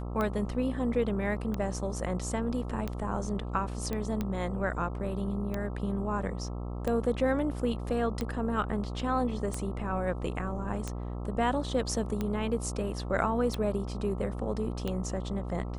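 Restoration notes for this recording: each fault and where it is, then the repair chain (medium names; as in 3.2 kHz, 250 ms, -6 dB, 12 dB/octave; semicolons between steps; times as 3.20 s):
buzz 60 Hz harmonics 22 -36 dBFS
tick 45 rpm -19 dBFS
3.93 s: pop -20 dBFS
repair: de-click; de-hum 60 Hz, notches 22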